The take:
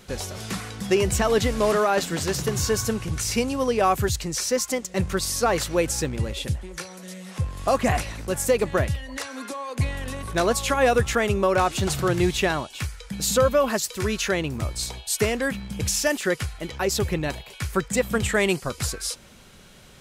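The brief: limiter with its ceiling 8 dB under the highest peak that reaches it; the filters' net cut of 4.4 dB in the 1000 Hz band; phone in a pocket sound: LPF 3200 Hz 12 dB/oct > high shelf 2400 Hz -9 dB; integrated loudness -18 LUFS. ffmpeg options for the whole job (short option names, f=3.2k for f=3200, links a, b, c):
-af "equalizer=f=1k:t=o:g=-4.5,alimiter=limit=-17dB:level=0:latency=1,lowpass=3.2k,highshelf=f=2.4k:g=-9,volume=11.5dB"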